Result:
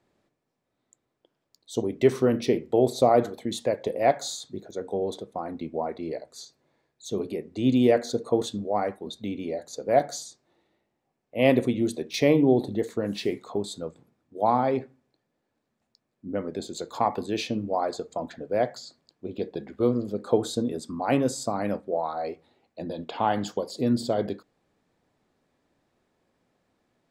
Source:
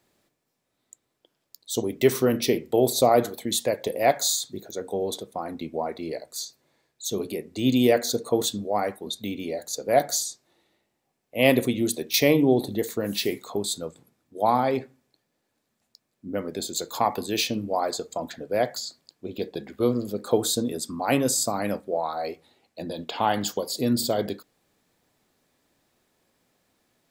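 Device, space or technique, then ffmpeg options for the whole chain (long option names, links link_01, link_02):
through cloth: -af "lowpass=9100,highshelf=frequency=2500:gain=-11"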